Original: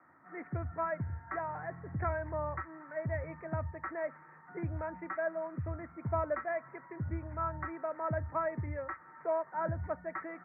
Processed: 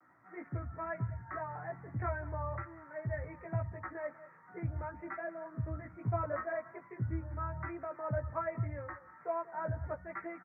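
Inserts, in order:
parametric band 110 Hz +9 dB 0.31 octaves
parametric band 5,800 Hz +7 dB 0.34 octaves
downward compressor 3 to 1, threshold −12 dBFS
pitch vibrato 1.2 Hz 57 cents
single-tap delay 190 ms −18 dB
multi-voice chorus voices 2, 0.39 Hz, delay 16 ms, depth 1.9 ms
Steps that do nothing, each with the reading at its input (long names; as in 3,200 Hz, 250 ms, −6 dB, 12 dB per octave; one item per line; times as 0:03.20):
parametric band 5,800 Hz: nothing at its input above 2,000 Hz
downward compressor, threshold −12 dBFS: peak of its input −20.0 dBFS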